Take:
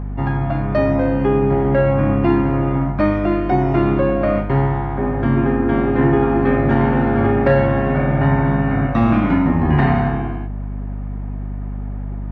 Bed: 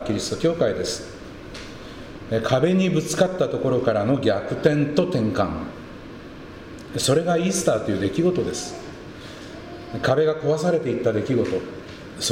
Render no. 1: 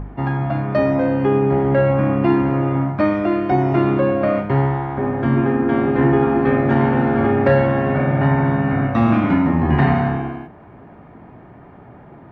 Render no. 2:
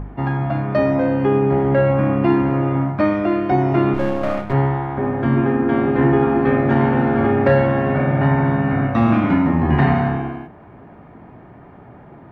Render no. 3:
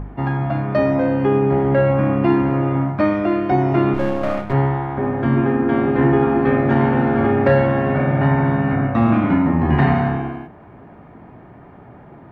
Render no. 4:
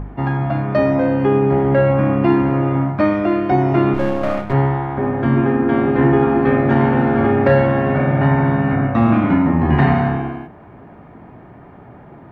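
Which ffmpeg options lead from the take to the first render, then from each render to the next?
-af "bandreject=f=50:t=h:w=4,bandreject=f=100:t=h:w=4,bandreject=f=150:t=h:w=4,bandreject=f=200:t=h:w=4,bandreject=f=250:t=h:w=4"
-filter_complex "[0:a]asplit=3[a][b][c];[a]afade=t=out:st=3.93:d=0.02[d];[b]aeval=exprs='if(lt(val(0),0),0.251*val(0),val(0))':c=same,afade=t=in:st=3.93:d=0.02,afade=t=out:st=4.52:d=0.02[e];[c]afade=t=in:st=4.52:d=0.02[f];[d][e][f]amix=inputs=3:normalize=0"
-filter_complex "[0:a]asettb=1/sr,asplit=3[a][b][c];[a]atrim=end=8.754[d];[b]atrim=start=8.75:end=9.61,asetpts=PTS-STARTPTS,afade=t=in:d=0.004:c=qsin,afade=t=out:st=0.856:d=0.004:c=qsin,lowpass=f=2.8k:p=1[e];[c]atrim=start=9.606[f];[d][e]acrossfade=d=0.004:c1=hsin:c2=qsin[g];[g][f]acrossfade=d=0.004:c1=qsin:c2=hsin"
-af "volume=1.5dB,alimiter=limit=-3dB:level=0:latency=1"

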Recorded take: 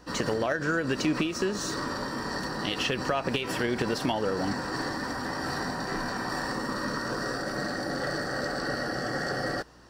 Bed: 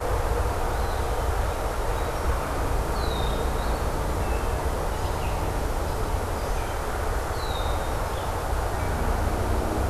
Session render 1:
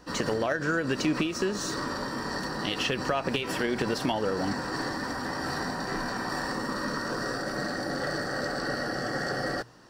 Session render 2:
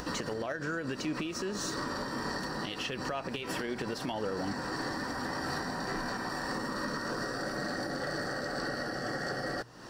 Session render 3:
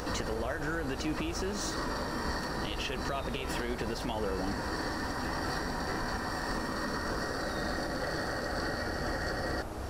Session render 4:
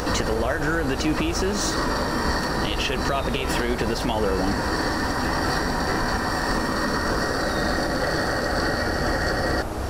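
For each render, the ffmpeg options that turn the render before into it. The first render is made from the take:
-af "bandreject=f=60:t=h:w=4,bandreject=f=120:t=h:w=4"
-af "acompressor=mode=upward:threshold=-31dB:ratio=2.5,alimiter=level_in=1dB:limit=-24dB:level=0:latency=1:release=282,volume=-1dB"
-filter_complex "[1:a]volume=-14dB[a];[0:a][a]amix=inputs=2:normalize=0"
-af "volume=10.5dB"

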